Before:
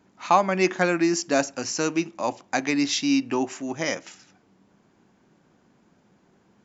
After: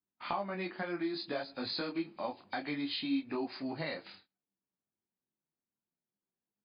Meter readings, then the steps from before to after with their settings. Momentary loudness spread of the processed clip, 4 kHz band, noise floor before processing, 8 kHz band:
5 LU, −8.5 dB, −63 dBFS, can't be measured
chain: hearing-aid frequency compression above 2,200 Hz 1.5 to 1
noise gate −49 dBFS, range −32 dB
downward compressor 6 to 1, threshold −28 dBFS, peak gain reduction 14.5 dB
micro pitch shift up and down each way 21 cents
level −1.5 dB

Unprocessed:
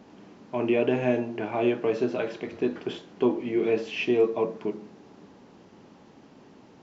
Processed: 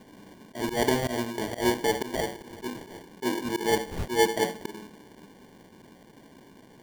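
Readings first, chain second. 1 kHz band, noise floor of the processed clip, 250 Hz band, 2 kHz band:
+5.5 dB, −54 dBFS, −3.5 dB, +2.5 dB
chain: decimation without filtering 34×
volume swells 124 ms

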